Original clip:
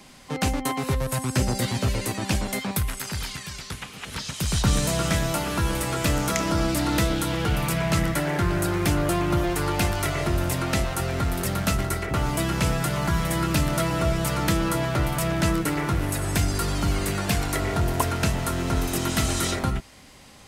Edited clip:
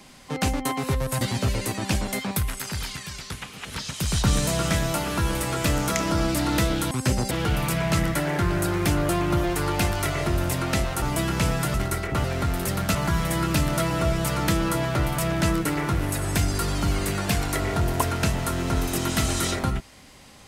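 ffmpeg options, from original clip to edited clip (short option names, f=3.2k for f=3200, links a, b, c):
-filter_complex "[0:a]asplit=8[a][b][c][d][e][f][g][h];[a]atrim=end=1.212[i];[b]atrim=start=1.608:end=7.312[j];[c]atrim=start=1.208:end=1.612[k];[d]atrim=start=7.308:end=11.022[l];[e]atrim=start=12.228:end=12.952[m];[f]atrim=start=11.728:end=12.232[n];[g]atrim=start=11.018:end=11.732[o];[h]atrim=start=12.948[p];[i][j]acrossfade=d=0.004:c1=hsin:c2=hsin[q];[q][k]acrossfade=d=0.004:c1=hsin:c2=hsin[r];[r][l]acrossfade=d=0.004:c1=hsin:c2=hsin[s];[s][m]acrossfade=d=0.004:c1=hsin:c2=hsin[t];[t][n]acrossfade=d=0.004:c1=hsin:c2=hsin[u];[u][o]acrossfade=d=0.004:c1=hsin:c2=hsin[v];[v][p]acrossfade=d=0.004:c1=hsin:c2=hsin"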